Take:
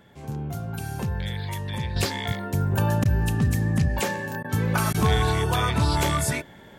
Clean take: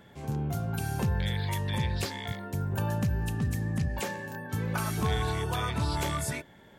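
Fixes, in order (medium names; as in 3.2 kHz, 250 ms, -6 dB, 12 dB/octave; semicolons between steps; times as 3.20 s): interpolate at 3.04/4.43/4.93 s, 12 ms; trim 0 dB, from 1.96 s -7.5 dB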